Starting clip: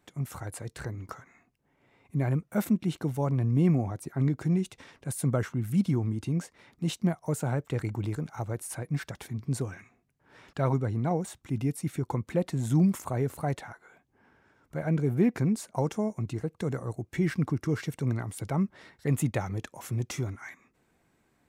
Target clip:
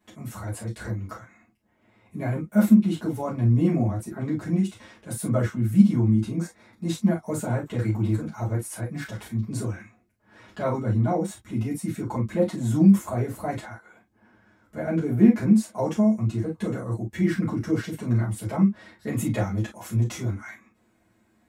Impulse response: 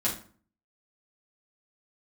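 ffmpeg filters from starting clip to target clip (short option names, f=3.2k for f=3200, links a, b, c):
-filter_complex "[0:a]asettb=1/sr,asplit=3[a][b][c];[a]atrim=end=6.364[d];[b]atrim=start=6.36:end=6.97,asetpts=PTS-STARTPTS,afade=t=in:d=0.004:c=qsin,afade=t=out:st=0.606:d=0.004:c=qsin,equalizer=f=3k:w=7.2:g=-14.5[e];[c]atrim=start=6.966[f];[d][e]acrossfade=d=0.004:c1=hsin:c2=qsin[g];[g][f]acrossfade=d=0.004:c1=qsin:c2=hsin[h];[1:a]atrim=start_sample=2205,atrim=end_sample=3087[i];[h][i]afir=irnorm=-1:irlink=0,volume=-4.5dB"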